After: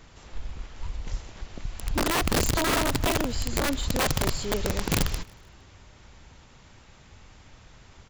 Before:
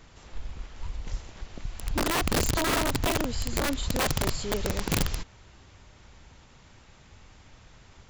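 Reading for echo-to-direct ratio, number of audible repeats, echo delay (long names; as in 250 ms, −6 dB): −22.5 dB, 2, 154 ms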